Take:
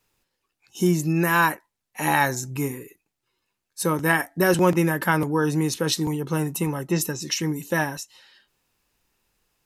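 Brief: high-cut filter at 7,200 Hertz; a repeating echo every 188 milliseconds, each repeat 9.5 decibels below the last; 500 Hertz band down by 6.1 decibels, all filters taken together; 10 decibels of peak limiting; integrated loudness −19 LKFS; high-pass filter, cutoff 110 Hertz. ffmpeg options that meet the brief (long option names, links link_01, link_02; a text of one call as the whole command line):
ffmpeg -i in.wav -af "highpass=110,lowpass=7200,equalizer=frequency=500:width_type=o:gain=-8.5,alimiter=limit=-15.5dB:level=0:latency=1,aecho=1:1:188|376|564|752:0.335|0.111|0.0365|0.012,volume=8.5dB" out.wav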